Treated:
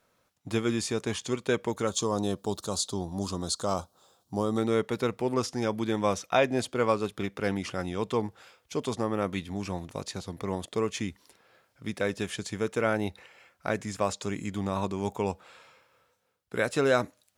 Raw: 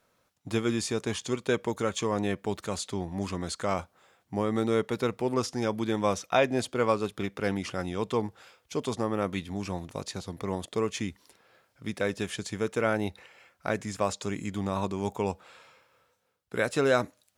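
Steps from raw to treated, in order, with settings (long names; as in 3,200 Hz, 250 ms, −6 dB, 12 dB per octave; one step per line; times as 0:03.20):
0:01.87–0:04.58: drawn EQ curve 1,200 Hz 0 dB, 2,100 Hz −18 dB, 3,800 Hz +6 dB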